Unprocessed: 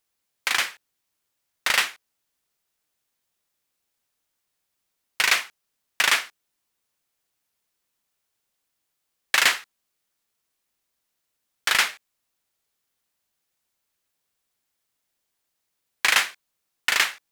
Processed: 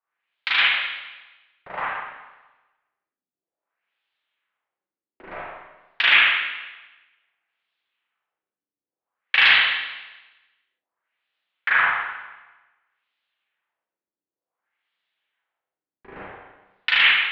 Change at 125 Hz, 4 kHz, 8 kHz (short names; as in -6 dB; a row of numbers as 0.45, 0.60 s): n/a, +3.0 dB, under -30 dB